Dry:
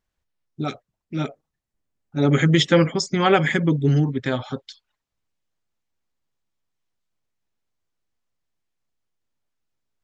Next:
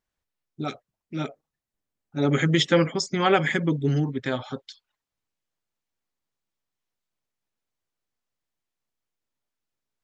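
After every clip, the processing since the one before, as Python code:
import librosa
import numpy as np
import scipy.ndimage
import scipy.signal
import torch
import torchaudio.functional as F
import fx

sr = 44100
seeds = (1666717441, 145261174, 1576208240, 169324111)

y = fx.low_shelf(x, sr, hz=140.0, db=-6.5)
y = F.gain(torch.from_numpy(y), -2.5).numpy()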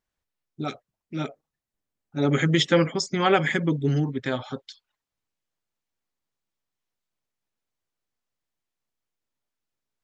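y = x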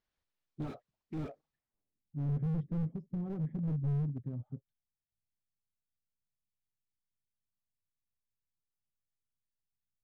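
y = fx.filter_sweep_lowpass(x, sr, from_hz=4900.0, to_hz=140.0, start_s=1.5, end_s=2.11, q=1.0)
y = fx.slew_limit(y, sr, full_power_hz=7.1)
y = F.gain(torch.from_numpy(y), -3.5).numpy()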